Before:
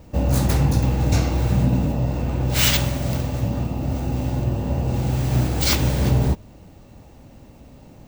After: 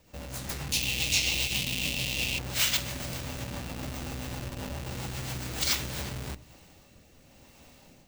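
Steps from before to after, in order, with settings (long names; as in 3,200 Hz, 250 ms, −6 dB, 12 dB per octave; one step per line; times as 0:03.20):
rotating-speaker cabinet horn 7.5 Hz, later 0.9 Hz, at 0:05.39
mains-hum notches 60/120/180/240/300 Hz
soft clipping −10 dBFS, distortion −25 dB
on a send at −12.5 dB: convolution reverb RT60 0.45 s, pre-delay 4 ms
on the sum: downward compressor 16 to 1, threshold −25 dBFS, peak gain reduction 9.5 dB
in parallel at −5 dB: comparator with hysteresis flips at −28.5 dBFS
on the sum: tilt shelving filter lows −8 dB, about 900 Hz
automatic gain control gain up to 5 dB
0:00.72–0:02.39: high shelf with overshoot 2,000 Hz +11 dB, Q 3
level −8.5 dB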